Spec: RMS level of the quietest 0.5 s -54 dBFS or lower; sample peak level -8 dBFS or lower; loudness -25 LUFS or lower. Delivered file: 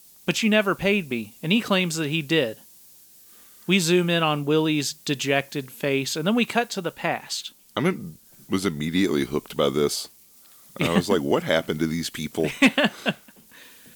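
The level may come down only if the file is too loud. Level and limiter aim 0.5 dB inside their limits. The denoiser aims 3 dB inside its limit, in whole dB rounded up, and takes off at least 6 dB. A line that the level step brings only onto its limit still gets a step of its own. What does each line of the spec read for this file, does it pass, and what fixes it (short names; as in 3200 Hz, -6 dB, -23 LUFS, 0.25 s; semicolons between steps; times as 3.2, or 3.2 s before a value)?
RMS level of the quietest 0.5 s -52 dBFS: fail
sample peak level -6.0 dBFS: fail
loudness -23.5 LUFS: fail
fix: denoiser 6 dB, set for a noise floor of -52 dBFS; gain -2 dB; limiter -8.5 dBFS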